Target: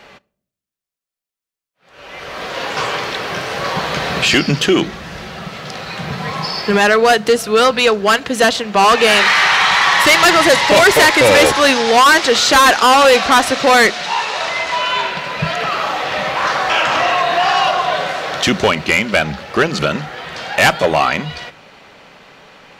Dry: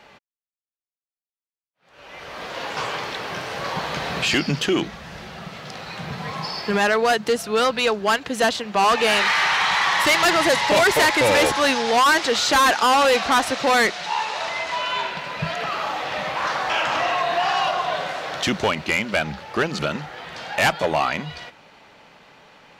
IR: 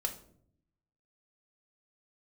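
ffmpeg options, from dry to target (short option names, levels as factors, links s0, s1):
-filter_complex "[0:a]bandreject=f=880:w=12,asplit=2[s0][s1];[1:a]atrim=start_sample=2205[s2];[s1][s2]afir=irnorm=-1:irlink=0,volume=0.158[s3];[s0][s3]amix=inputs=2:normalize=0,volume=2.11"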